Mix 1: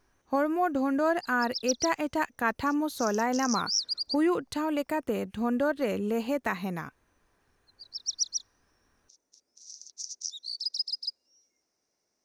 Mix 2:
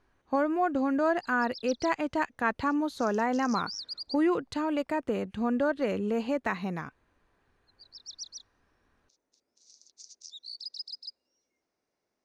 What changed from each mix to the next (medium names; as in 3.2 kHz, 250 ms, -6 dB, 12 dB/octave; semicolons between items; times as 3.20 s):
background: add peaking EQ 5.7 kHz -10 dB 0.41 oct; master: add distance through air 68 m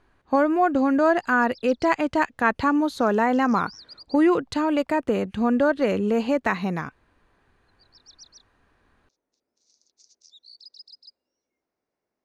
speech +7.0 dB; background: add treble shelf 3.5 kHz -10 dB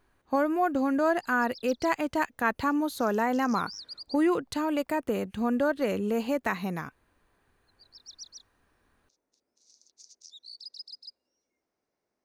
speech -6.0 dB; master: remove distance through air 68 m